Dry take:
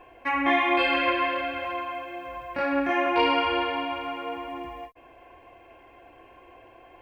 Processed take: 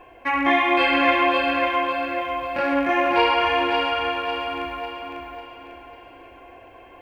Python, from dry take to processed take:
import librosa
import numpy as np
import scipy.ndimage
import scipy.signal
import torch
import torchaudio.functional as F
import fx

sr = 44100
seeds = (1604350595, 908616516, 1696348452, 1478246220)

y = fx.rattle_buzz(x, sr, strikes_db=-41.0, level_db=-31.0)
y = fx.echo_feedback(y, sr, ms=547, feedback_pct=41, wet_db=-4.5)
y = y * librosa.db_to_amplitude(3.5)